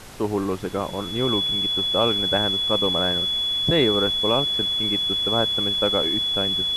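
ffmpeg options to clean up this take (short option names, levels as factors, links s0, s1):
-af "bandreject=f=3400:w=30,afftdn=nr=30:nf=-27"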